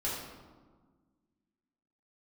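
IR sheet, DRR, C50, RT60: -8.0 dB, 1.0 dB, 1.5 s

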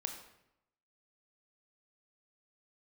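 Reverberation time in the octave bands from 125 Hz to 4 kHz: 0.95, 0.90, 0.85, 0.80, 0.75, 0.60 s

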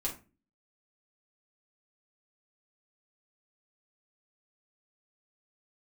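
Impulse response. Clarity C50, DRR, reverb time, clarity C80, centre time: 10.0 dB, -3.5 dB, 0.30 s, 16.5 dB, 20 ms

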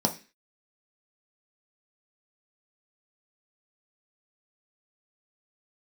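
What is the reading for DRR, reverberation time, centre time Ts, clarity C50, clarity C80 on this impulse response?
2.5 dB, 0.30 s, 10 ms, 14.5 dB, 20.0 dB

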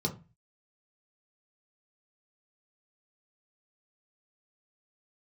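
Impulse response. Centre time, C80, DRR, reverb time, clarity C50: 11 ms, 20.0 dB, 0.0 dB, 0.30 s, 14.0 dB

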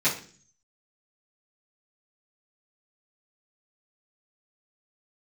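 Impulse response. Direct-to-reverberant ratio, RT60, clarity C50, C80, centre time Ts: -12.5 dB, 0.45 s, 9.0 dB, 14.0 dB, 22 ms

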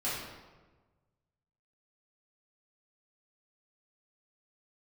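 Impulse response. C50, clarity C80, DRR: 0.0 dB, 3.0 dB, -10.0 dB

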